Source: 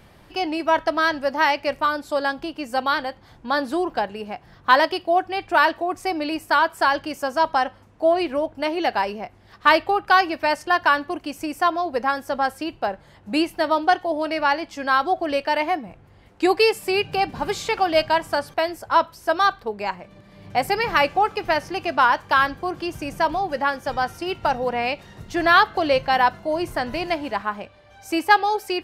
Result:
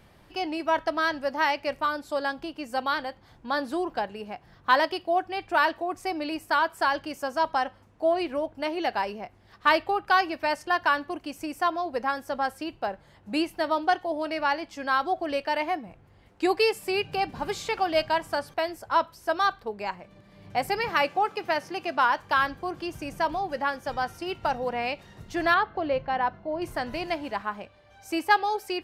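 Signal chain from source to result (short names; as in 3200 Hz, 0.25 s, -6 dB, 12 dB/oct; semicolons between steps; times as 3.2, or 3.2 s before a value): 20.89–22.18 HPF 150 Hz 12 dB/oct; 25.54–26.62 tape spacing loss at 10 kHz 30 dB; gain -5.5 dB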